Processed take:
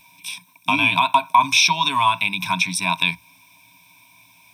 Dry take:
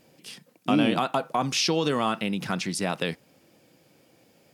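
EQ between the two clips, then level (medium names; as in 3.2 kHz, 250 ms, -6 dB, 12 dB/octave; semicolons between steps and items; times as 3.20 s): rippled EQ curve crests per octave 1.6, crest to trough 16 dB; dynamic bell 8.5 kHz, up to -6 dB, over -41 dBFS, Q 0.71; FFT filter 110 Hz 0 dB, 300 Hz -9 dB, 480 Hz -27 dB, 950 Hz +15 dB, 1.5 kHz -7 dB, 2.4 kHz +13 dB, 5 kHz +6 dB, 9.6 kHz +10 dB; 0.0 dB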